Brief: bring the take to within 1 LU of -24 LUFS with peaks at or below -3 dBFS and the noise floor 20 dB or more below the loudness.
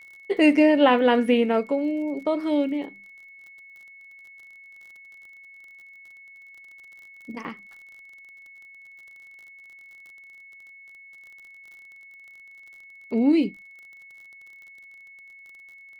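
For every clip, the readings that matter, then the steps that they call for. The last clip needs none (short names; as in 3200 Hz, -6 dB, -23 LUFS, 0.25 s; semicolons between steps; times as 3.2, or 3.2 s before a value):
ticks 38/s; steady tone 2200 Hz; tone level -45 dBFS; loudness -22.0 LUFS; peak -5.5 dBFS; loudness target -24.0 LUFS
-> de-click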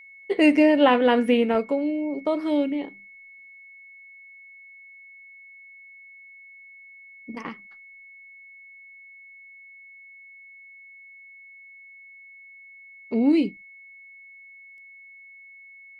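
ticks 0.13/s; steady tone 2200 Hz; tone level -45 dBFS
-> notch 2200 Hz, Q 30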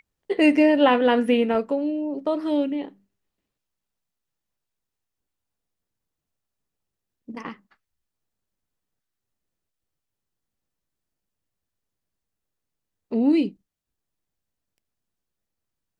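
steady tone none; loudness -21.5 LUFS; peak -6.0 dBFS; loudness target -24.0 LUFS
-> gain -2.5 dB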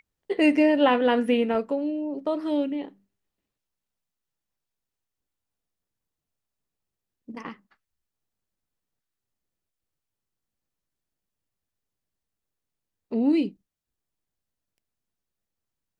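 loudness -24.0 LUFS; peak -8.5 dBFS; noise floor -86 dBFS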